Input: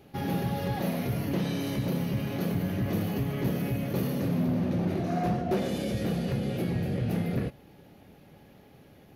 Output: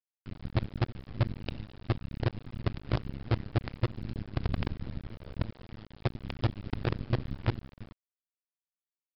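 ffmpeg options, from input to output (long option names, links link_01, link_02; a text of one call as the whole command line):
ffmpeg -i in.wav -filter_complex "[0:a]afftdn=noise_reduction=21:noise_floor=-48,bass=frequency=250:gain=5,treble=frequency=4000:gain=6,aecho=1:1:6.7:0.9,adynamicequalizer=threshold=0.02:dfrequency=110:dqfactor=2.3:tfrequency=110:tqfactor=2.3:attack=5:release=100:ratio=0.375:range=2:mode=cutabove:tftype=bell,acrossover=split=160[link_01][link_02];[link_02]acompressor=threshold=-43dB:ratio=5[link_03];[link_01][link_03]amix=inputs=2:normalize=0,acrossover=split=200|1300[link_04][link_05][link_06];[link_05]adelay=40[link_07];[link_04]adelay=100[link_08];[link_08][link_07][link_06]amix=inputs=3:normalize=0,afreqshift=-240,aeval=exprs='0.126*(cos(1*acos(clip(val(0)/0.126,-1,1)))-cos(1*PI/2))+0.0112*(cos(3*acos(clip(val(0)/0.126,-1,1)))-cos(3*PI/2))+0.00126*(cos(6*acos(clip(val(0)/0.126,-1,1)))-cos(6*PI/2))+0.0126*(cos(7*acos(clip(val(0)/0.126,-1,1)))-cos(7*PI/2))+0.00112*(cos(8*acos(clip(val(0)/0.126,-1,1)))-cos(8*PI/2))':channel_layout=same,asplit=2[link_09][link_10];[link_10]aecho=0:1:332:0.282[link_11];[link_09][link_11]amix=inputs=2:normalize=0,acrusher=bits=5:dc=4:mix=0:aa=0.000001,aresample=11025,aresample=44100" out.wav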